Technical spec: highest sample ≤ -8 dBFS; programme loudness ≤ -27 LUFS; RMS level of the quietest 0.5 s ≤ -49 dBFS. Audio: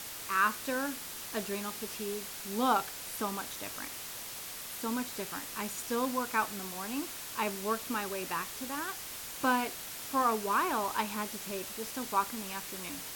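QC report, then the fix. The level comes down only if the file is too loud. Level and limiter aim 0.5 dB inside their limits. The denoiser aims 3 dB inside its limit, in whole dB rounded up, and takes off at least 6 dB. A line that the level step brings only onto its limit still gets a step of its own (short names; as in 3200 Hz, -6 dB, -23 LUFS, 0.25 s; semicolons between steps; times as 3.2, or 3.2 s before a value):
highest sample -14.5 dBFS: OK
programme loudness -34.0 LUFS: OK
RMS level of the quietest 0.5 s -43 dBFS: fail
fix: denoiser 9 dB, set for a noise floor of -43 dBFS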